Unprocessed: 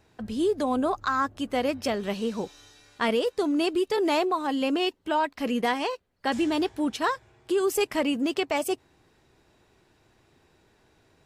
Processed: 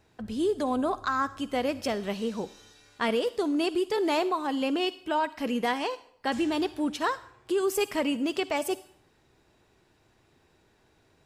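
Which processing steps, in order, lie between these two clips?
on a send: high-shelf EQ 2,100 Hz +10.5 dB + convolution reverb RT60 0.70 s, pre-delay 43 ms, DRR 17.5 dB
on the sum: level −2 dB

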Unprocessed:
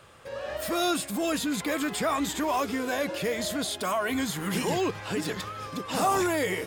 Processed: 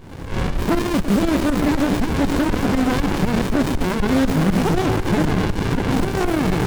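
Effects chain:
0:00.79–0:01.23: Chebyshev band-stop filter 270–1,300 Hz, order 3
0:05.11–0:05.91: high shelf with overshoot 2,300 Hz −10 dB, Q 3
echo with a time of its own for lows and highs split 1,500 Hz, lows 110 ms, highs 486 ms, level −10 dB
shaped tremolo saw up 4 Hz, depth 85%
boost into a limiter +31 dB
windowed peak hold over 65 samples
level −5 dB

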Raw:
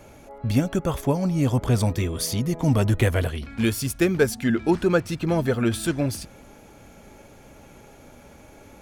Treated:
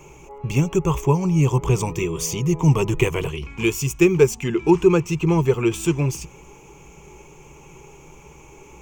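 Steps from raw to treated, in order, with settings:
EQ curve with evenly spaced ripples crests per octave 0.73, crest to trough 16 dB

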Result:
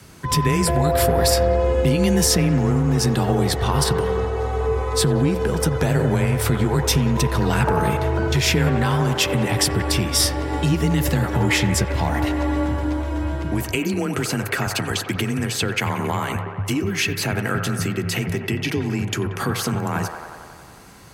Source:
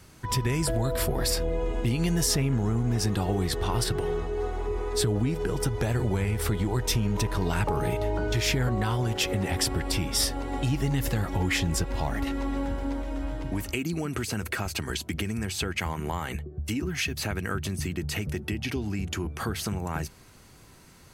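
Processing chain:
delay with a band-pass on its return 91 ms, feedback 74%, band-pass 900 Hz, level −5.5 dB
frequency shifter +25 Hz
level +7 dB

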